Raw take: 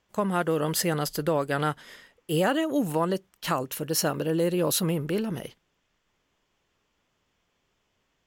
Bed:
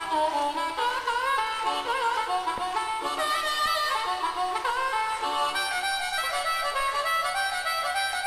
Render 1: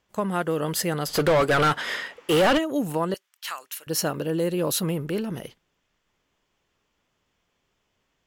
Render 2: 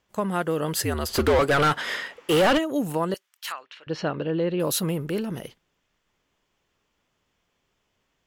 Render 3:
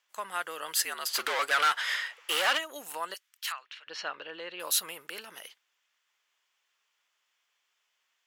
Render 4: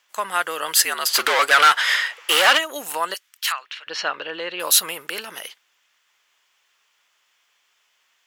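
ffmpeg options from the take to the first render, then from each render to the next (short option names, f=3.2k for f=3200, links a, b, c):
-filter_complex "[0:a]asplit=3[a][b][c];[a]afade=t=out:st=1.08:d=0.02[d];[b]asplit=2[e][f];[f]highpass=f=720:p=1,volume=28dB,asoftclip=type=tanh:threshold=-11.5dB[g];[e][g]amix=inputs=2:normalize=0,lowpass=f=2.6k:p=1,volume=-6dB,afade=t=in:st=1.08:d=0.02,afade=t=out:st=2.57:d=0.02[h];[c]afade=t=in:st=2.57:d=0.02[i];[d][h][i]amix=inputs=3:normalize=0,asettb=1/sr,asplit=3[j][k][l];[j]atrim=end=3.144[m];[k]atrim=start=3.14:end=3.87,asetpts=PTS-STARTPTS,afade=t=in:d=0.004:c=qsin,afade=t=out:st=0.726:d=0.004:c=qsin,highpass=1.5k[n];[l]atrim=start=3.866[o];[m][n]acrossfade=d=0.004:c1=hsin:c2=qsin[p];[p][o]acrossfade=d=0.004:c1=qsin:c2=hsin"
-filter_complex "[0:a]asettb=1/sr,asplit=3[a][b][c];[a]atrim=end=0.764[d];[b]atrim=start=0.76:end=1.39,asetpts=PTS-STARTPTS,afade=t=in:d=0.004:c=qsin,afade=t=out:st=0.626:d=0.004:c=qsin,afreqshift=-71[e];[c]atrim=start=1.386[f];[d][e]acrossfade=d=0.004:c1=hsin:c2=qsin[g];[g][f]acrossfade=d=0.004:c1=qsin:c2=hsin,asettb=1/sr,asplit=3[h][i][j];[h]atrim=end=3.524[k];[i]atrim=start=3.52:end=4.6,asetpts=PTS-STARTPTS,afade=t=in:d=0.004:c=qsin,afade=t=out:st=1.076:d=0.004:c=qsin,lowpass=f=3.8k:w=0.5412,lowpass=f=3.8k:w=1.3066[l];[j]atrim=start=4.596[m];[k][l]acrossfade=d=0.004:c1=hsin:c2=qsin[n];[n][m]acrossfade=d=0.004:c1=qsin:c2=hsin"
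-af "highpass=1.3k"
-af "volume=11.5dB"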